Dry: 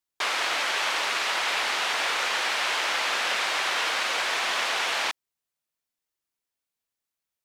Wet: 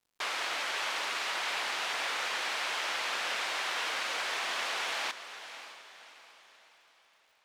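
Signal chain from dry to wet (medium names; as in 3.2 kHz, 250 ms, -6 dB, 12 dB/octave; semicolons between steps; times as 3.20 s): word length cut 10-bit, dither none; echo that smears into a reverb 585 ms, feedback 41%, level -12 dB; crackle 210 per s -54 dBFS; trim -7.5 dB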